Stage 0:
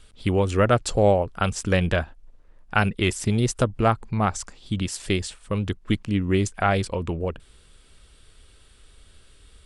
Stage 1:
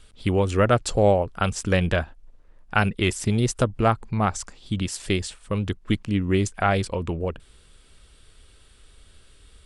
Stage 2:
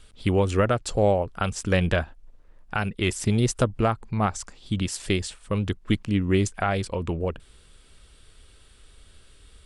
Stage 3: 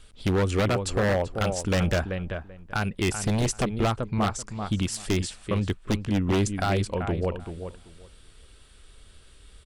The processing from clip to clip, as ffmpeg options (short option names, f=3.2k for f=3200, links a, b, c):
-af anull
-af "alimiter=limit=-10.5dB:level=0:latency=1:release=466"
-filter_complex "[0:a]asplit=2[a][b];[b]adelay=386,lowpass=f=2.3k:p=1,volume=-9dB,asplit=2[c][d];[d]adelay=386,lowpass=f=2.3k:p=1,volume=0.17,asplit=2[e][f];[f]adelay=386,lowpass=f=2.3k:p=1,volume=0.17[g];[a][c][e][g]amix=inputs=4:normalize=0,aeval=exprs='0.141*(abs(mod(val(0)/0.141+3,4)-2)-1)':c=same"